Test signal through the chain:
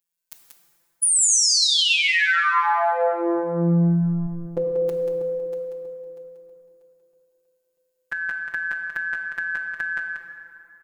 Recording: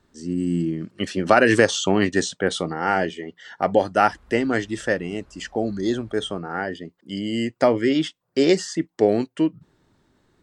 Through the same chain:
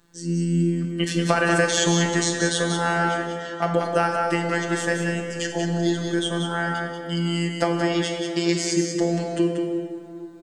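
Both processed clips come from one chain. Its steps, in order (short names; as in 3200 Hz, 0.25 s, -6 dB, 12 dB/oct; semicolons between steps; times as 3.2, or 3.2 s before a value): high shelf 5800 Hz +8.5 dB; compressor 3:1, threshold -20 dBFS; robotiser 170 Hz; on a send: echo 0.186 s -6.5 dB; on the sum: plate-style reverb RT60 2.8 s, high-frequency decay 0.55×, DRR 3.5 dB; gain +3.5 dB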